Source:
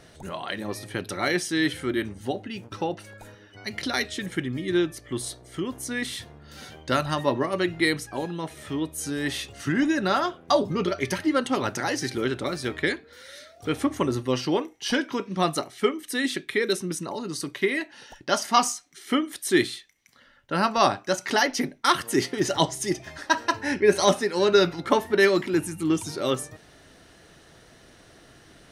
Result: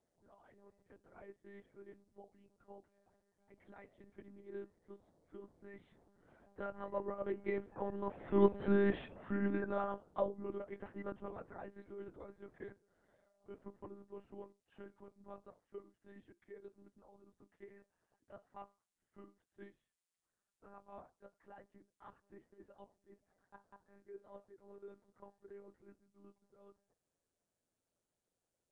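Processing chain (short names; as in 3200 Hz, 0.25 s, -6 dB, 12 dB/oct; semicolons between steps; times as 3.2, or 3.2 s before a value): Doppler pass-by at 8.59, 15 m/s, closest 2.1 m; monotone LPC vocoder at 8 kHz 200 Hz; LPF 1000 Hz 12 dB/oct; low shelf 120 Hz -11 dB; gain +8 dB; Nellymoser 44 kbps 22050 Hz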